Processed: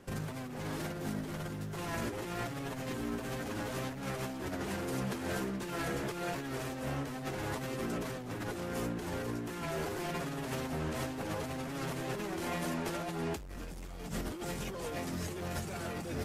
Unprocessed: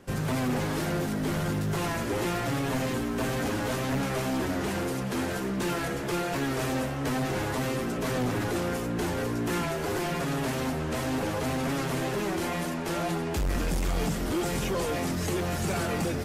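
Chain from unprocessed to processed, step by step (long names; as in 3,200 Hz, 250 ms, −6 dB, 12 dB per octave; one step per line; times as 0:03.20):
compressor whose output falls as the input rises −31 dBFS, ratio −0.5
level −6 dB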